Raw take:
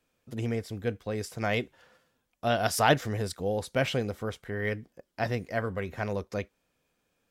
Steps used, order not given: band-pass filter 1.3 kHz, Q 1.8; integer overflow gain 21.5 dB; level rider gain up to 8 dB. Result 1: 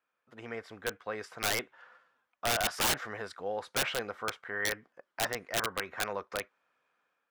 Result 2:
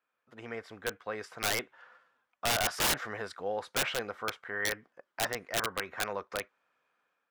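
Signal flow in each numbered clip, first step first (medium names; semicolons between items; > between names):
level rider > band-pass filter > integer overflow; band-pass filter > level rider > integer overflow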